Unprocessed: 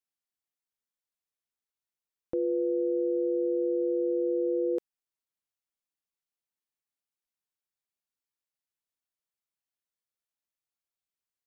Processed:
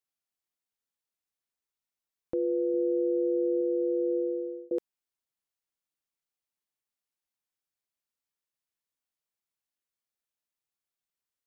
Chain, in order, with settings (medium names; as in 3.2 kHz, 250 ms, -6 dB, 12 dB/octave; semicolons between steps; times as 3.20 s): 2.74–3.61 s: peaking EQ 120 Hz +6 dB 1.6 oct; 4.16–4.71 s: fade out